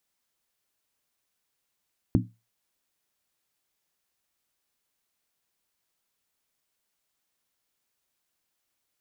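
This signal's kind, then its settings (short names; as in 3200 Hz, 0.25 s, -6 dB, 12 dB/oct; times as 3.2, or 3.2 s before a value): skin hit, lowest mode 114 Hz, decay 0.27 s, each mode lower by 1 dB, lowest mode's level -19 dB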